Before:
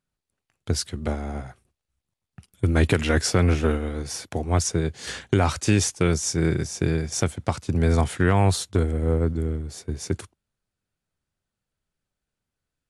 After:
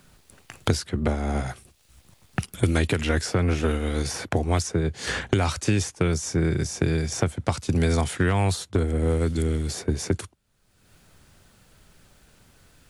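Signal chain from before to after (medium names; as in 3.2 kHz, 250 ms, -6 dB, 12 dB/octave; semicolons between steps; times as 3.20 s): three bands compressed up and down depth 100%; trim -1.5 dB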